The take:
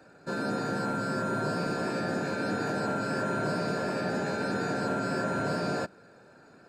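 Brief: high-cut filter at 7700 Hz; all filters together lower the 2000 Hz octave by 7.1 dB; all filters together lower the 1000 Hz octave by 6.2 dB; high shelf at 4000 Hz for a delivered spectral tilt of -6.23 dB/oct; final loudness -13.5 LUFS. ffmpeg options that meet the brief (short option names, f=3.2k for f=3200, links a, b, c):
-af "lowpass=7.7k,equalizer=f=1k:t=o:g=-6.5,equalizer=f=2k:t=o:g=-5.5,highshelf=f=4k:g=-7.5,volume=19.5dB"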